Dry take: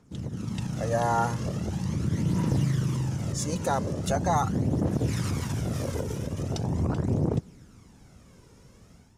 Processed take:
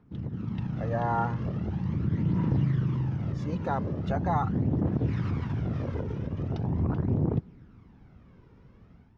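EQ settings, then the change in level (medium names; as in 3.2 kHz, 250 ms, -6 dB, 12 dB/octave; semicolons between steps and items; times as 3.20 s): low-pass 2.9 kHz 6 dB/octave; distance through air 280 m; peaking EQ 560 Hz -4.5 dB 0.71 oct; 0.0 dB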